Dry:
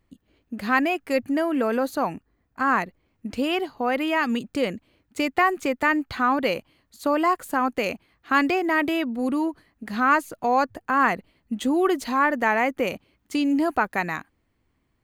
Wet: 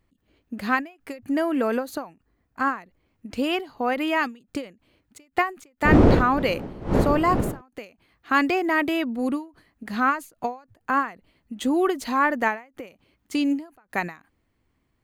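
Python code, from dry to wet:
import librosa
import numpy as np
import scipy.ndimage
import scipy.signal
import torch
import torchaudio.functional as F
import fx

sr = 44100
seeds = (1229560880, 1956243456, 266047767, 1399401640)

y = fx.dmg_wind(x, sr, seeds[0], corner_hz=360.0, level_db=-23.0, at=(5.84, 7.6), fade=0.02)
y = fx.end_taper(y, sr, db_per_s=180.0)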